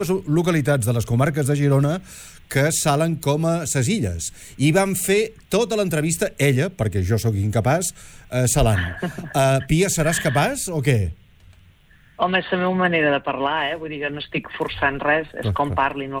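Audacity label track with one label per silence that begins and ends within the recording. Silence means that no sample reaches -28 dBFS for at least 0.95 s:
11.120000	12.190000	silence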